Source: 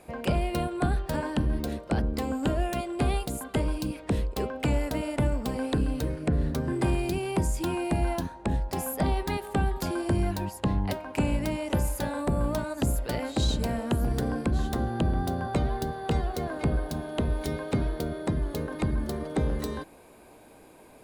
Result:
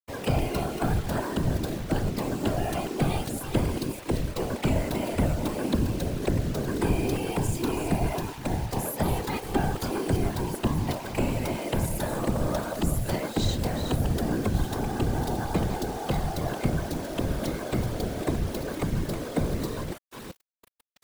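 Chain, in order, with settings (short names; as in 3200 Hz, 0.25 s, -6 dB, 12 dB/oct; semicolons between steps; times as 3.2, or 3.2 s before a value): reverse delay 0.333 s, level -8.5 dB; bit-crush 7-bit; whisperiser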